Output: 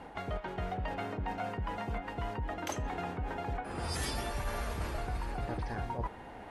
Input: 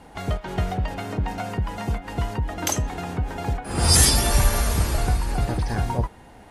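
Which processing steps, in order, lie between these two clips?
bass and treble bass −6 dB, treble −13 dB
reversed playback
downward compressor 6 to 1, threshold −35 dBFS, peak gain reduction 16 dB
reversed playback
level +1.5 dB

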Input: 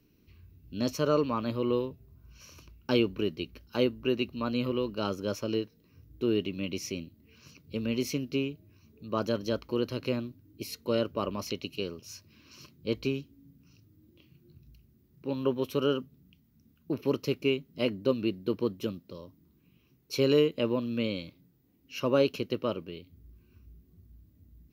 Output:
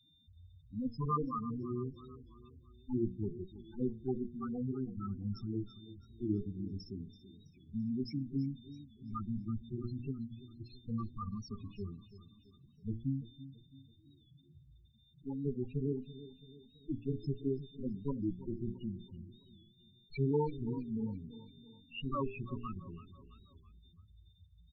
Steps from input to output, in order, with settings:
lower of the sound and its delayed copy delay 0.76 ms
steady tone 3,600 Hz −60 dBFS
low-pass that shuts in the quiet parts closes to 2,300 Hz, open at −24.5 dBFS
spectral peaks only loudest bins 4
high-shelf EQ 2,200 Hz +6.5 dB
mains-hum notches 60/120/180/240/300/360/420/480 Hz
on a send: repeating echo 332 ms, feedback 47%, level −15.5 dB
on the sum: wow of a warped record 45 rpm, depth 100 cents
level −1.5 dB

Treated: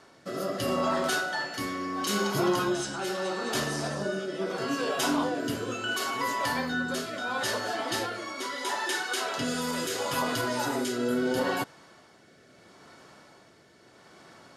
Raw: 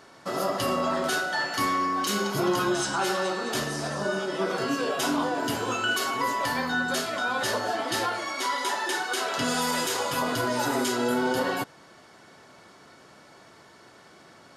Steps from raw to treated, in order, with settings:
rotating-speaker cabinet horn 0.75 Hz

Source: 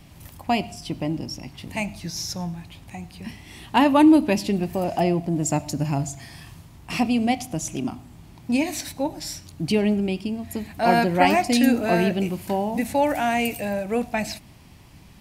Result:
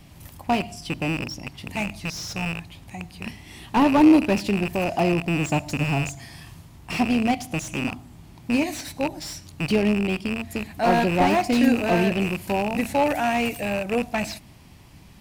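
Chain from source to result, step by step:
loose part that buzzes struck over −32 dBFS, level −12 dBFS
slew-rate limiting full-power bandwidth 140 Hz

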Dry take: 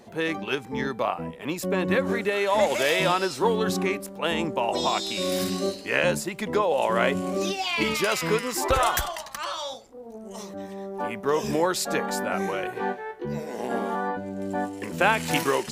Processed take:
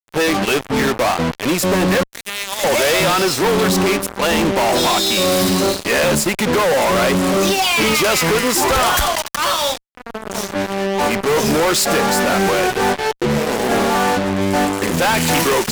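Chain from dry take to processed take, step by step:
0:02.03–0:02.64: first difference
fuzz pedal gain 40 dB, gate −36 dBFS

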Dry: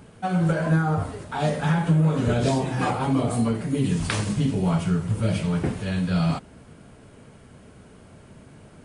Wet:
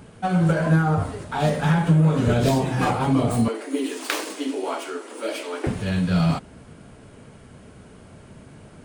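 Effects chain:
stylus tracing distortion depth 0.072 ms
0:03.48–0:05.67: Butterworth high-pass 270 Hz 72 dB per octave
level +2.5 dB

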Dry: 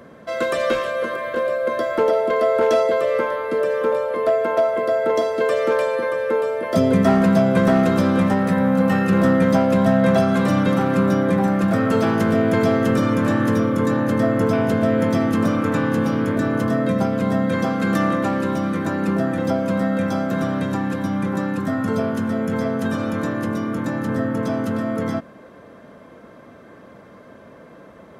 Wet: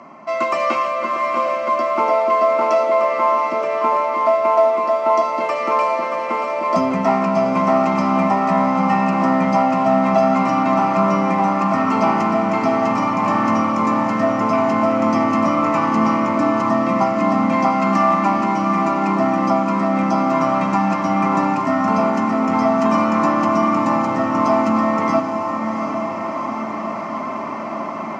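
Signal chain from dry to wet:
parametric band 790 Hz +10 dB 3 octaves
automatic gain control gain up to 13 dB
phaser with its sweep stopped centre 2,400 Hz, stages 8
in parallel at −10.5 dB: hard clipping −29 dBFS, distortion −4 dB
on the sum: band-pass filter 240–7,800 Hz
on a send: feedback delay with all-pass diffusion 768 ms, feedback 64%, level −7 dB

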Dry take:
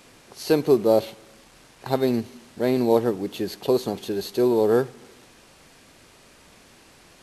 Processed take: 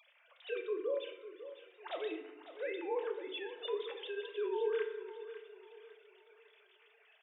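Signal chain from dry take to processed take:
three sine waves on the formant tracks
first difference
brickwall limiter −40.5 dBFS, peak gain reduction 11.5 dB
repeating echo 551 ms, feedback 37%, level −13 dB
feedback delay network reverb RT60 1 s, low-frequency decay 1.3×, high-frequency decay 0.55×, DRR 4 dB
level +9 dB

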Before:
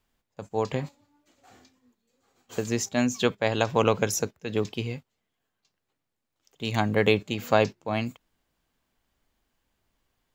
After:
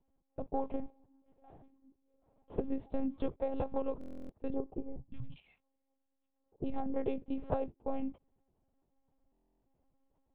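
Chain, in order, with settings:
running median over 9 samples
drawn EQ curve 400 Hz 0 dB, 810 Hz −2 dB, 1,500 Hz −18 dB
downward compressor 12 to 1, threshold −30 dBFS, peak gain reduction 14 dB
0:04.54–0:06.66: three-band delay without the direct sound mids, lows, highs 350/590 ms, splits 170/1,400 Hz
one-pitch LPC vocoder at 8 kHz 270 Hz
buffer that repeats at 0:03.99/0:09.32, samples 1,024, times 12
level +1 dB

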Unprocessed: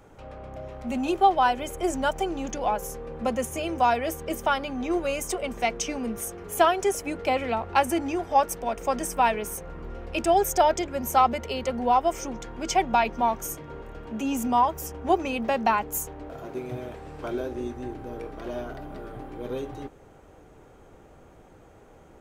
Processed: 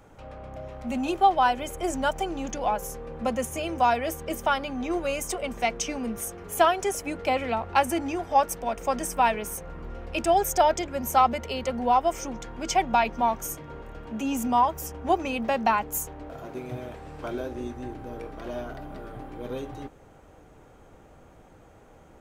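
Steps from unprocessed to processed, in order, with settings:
parametric band 390 Hz −4 dB 0.42 octaves

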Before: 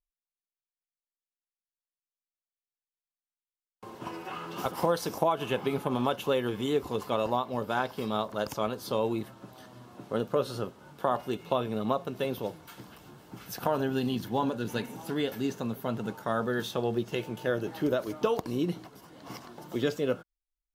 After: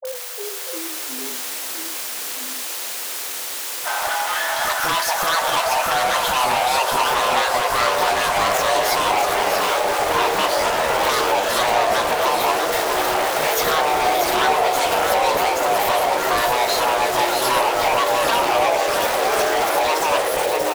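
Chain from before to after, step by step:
converter with a step at zero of −32.5 dBFS
in parallel at 0 dB: downward compressor, threshold −36 dBFS, peak gain reduction 15 dB
on the sum: frequency shifter +490 Hz
wave folding −22 dBFS
all-pass dispersion highs, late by 52 ms, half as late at 690 Hz
on a send: multi-tap delay 62/640 ms −17.5/−5.5 dB
on the sum: delay with pitch and tempo change per echo 344 ms, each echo −4 semitones, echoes 3
level +6.5 dB

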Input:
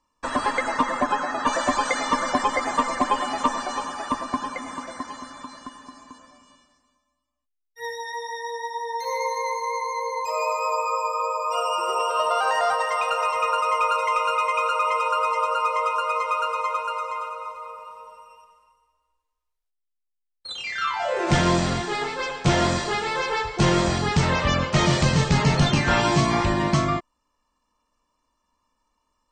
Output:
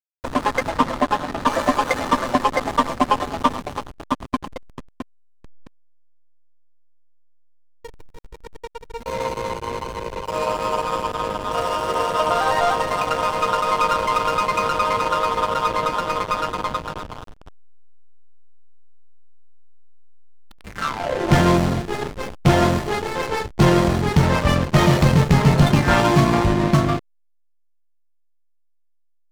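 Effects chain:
slack as between gear wheels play −19 dBFS
level +5.5 dB

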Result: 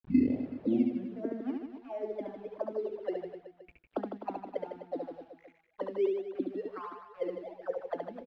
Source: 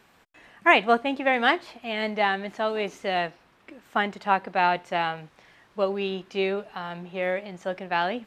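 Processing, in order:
turntable start at the beginning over 1.48 s
envelope filter 260–3,100 Hz, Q 11, down, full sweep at −22 dBFS
hum removal 233.5 Hz, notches 4
bit-depth reduction 10 bits, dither none
reverb reduction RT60 1.7 s
in parallel at −7 dB: sample-and-hold swept by an LFO 13×, swing 100% 1.4 Hz
on the sum: high-frequency loss of the air 370 metres
on a send: reverse bouncing-ball delay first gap 70 ms, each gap 1.2×, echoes 5
on the sum: level +1.5 dB

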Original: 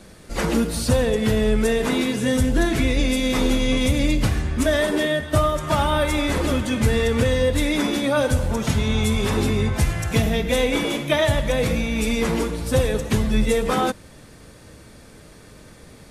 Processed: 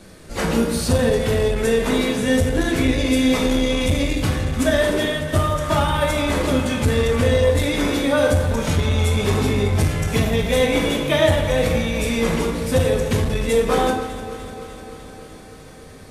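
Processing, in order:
delay that swaps between a low-pass and a high-pass 150 ms, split 1,000 Hz, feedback 83%, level −12 dB
on a send at −2 dB: convolution reverb RT60 0.65 s, pre-delay 9 ms
on the sum: saturating transformer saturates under 200 Hz

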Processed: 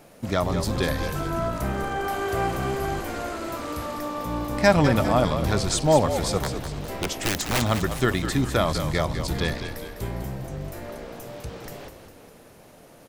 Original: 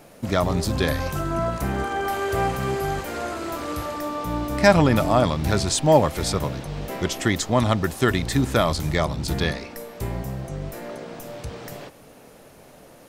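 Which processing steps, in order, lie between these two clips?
0:06.38–0:07.62: wrap-around overflow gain 14.5 dB
echo with shifted repeats 202 ms, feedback 50%, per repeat −55 Hz, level −9 dB
level −2.5 dB

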